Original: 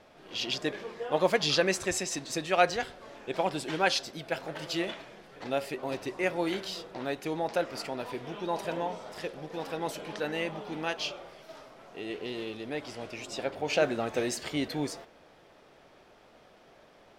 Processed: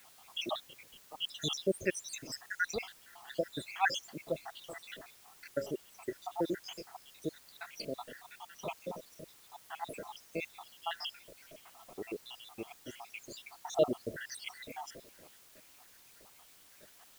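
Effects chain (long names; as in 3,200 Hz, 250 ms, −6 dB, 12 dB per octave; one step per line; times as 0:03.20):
time-frequency cells dropped at random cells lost 82%
0:00.49–0:01.29: voice inversion scrambler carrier 4,000 Hz
bit-depth reduction 10 bits, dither triangular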